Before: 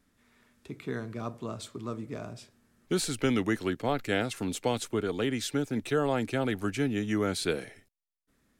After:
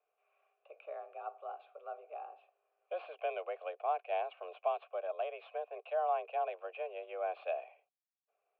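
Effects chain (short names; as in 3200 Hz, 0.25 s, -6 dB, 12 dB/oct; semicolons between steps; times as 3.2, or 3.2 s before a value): tracing distortion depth 0.044 ms; mistuned SSB +170 Hz 270–3000 Hz; vowel filter a; gain +2 dB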